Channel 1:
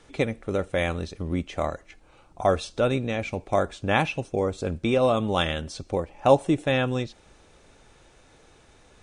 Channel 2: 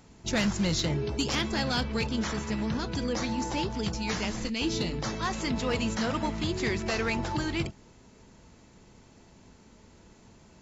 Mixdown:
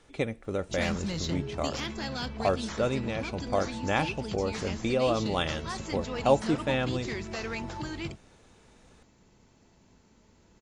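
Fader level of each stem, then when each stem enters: -5.0, -6.0 dB; 0.00, 0.45 s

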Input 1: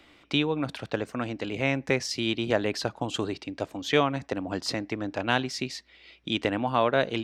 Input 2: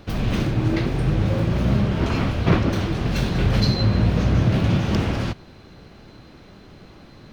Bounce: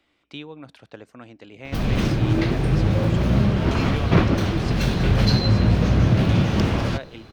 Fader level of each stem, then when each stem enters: -11.5, +1.0 dB; 0.00, 1.65 s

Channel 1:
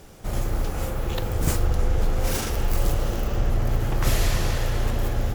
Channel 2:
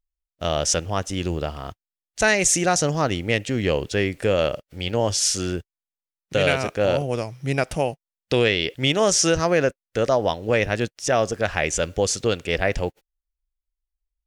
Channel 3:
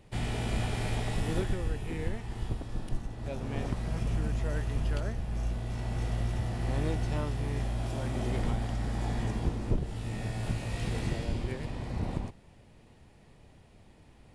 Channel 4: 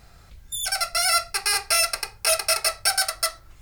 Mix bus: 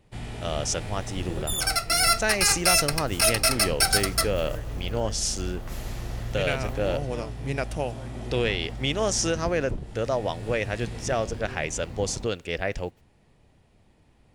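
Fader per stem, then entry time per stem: -14.5, -6.5, -3.5, -0.5 dB; 1.65, 0.00, 0.00, 0.95 s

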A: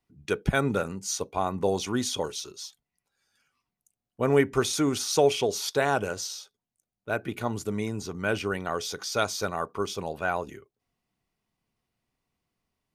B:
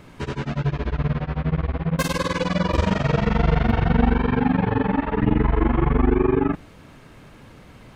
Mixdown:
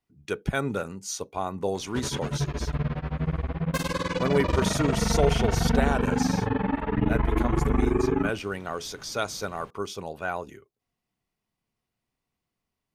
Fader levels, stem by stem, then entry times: -2.5, -5.0 dB; 0.00, 1.75 s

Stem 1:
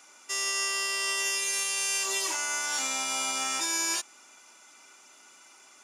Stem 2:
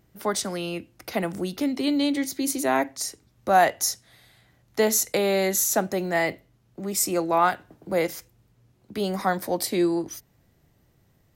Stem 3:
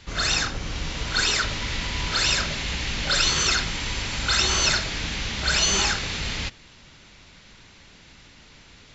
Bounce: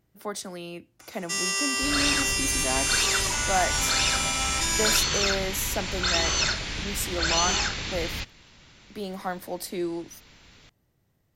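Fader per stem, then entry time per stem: +2.5, -7.5, -3.5 dB; 1.00, 0.00, 1.75 s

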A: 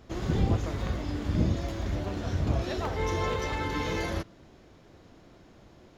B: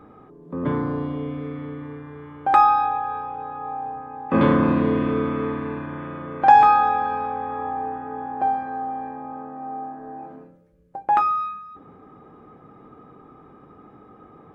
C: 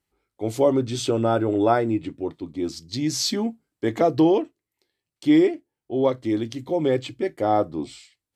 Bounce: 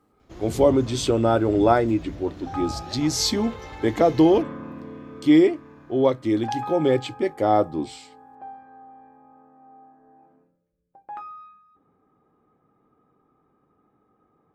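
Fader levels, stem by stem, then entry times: -8.0, -18.0, +1.5 dB; 0.20, 0.00, 0.00 s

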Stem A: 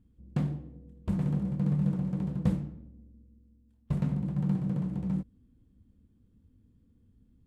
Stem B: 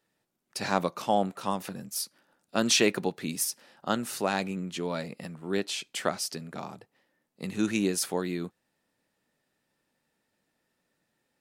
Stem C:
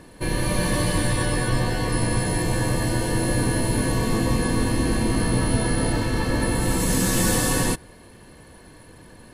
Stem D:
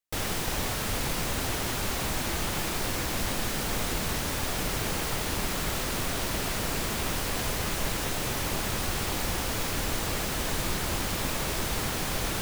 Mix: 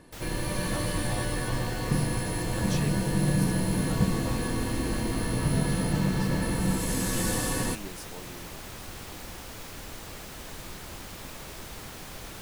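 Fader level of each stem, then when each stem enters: +1.0, -16.0, -7.5, -11.5 dB; 1.55, 0.00, 0.00, 0.00 s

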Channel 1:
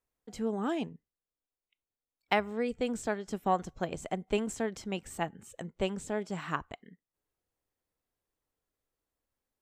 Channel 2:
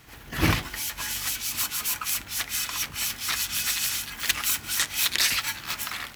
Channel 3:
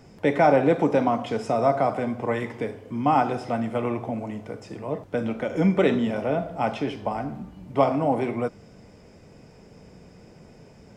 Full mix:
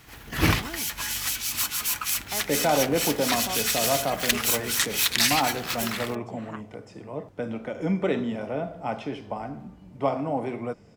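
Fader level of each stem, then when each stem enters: -8.0, +1.0, -5.0 dB; 0.00, 0.00, 2.25 s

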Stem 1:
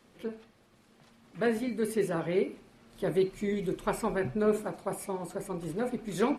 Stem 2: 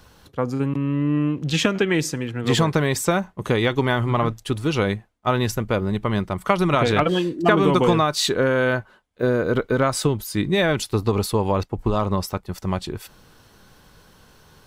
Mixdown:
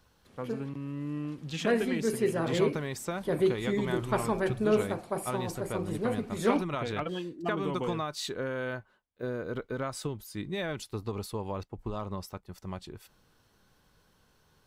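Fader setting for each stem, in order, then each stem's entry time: +1.0, -14.5 dB; 0.25, 0.00 s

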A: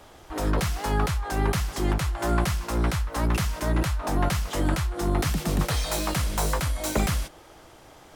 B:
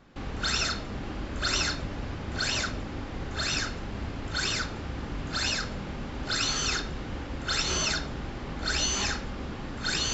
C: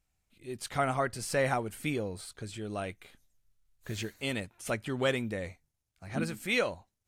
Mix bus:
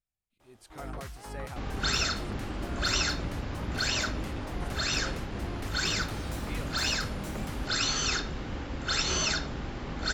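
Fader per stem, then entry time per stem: -16.0, -0.5, -15.5 dB; 0.40, 1.40, 0.00 s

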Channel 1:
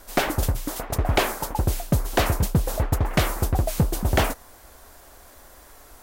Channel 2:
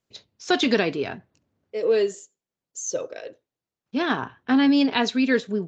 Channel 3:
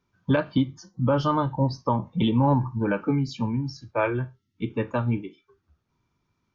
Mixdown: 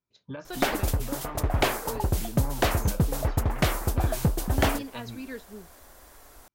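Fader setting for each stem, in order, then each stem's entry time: -3.0, -18.0, -17.0 dB; 0.45, 0.00, 0.00 s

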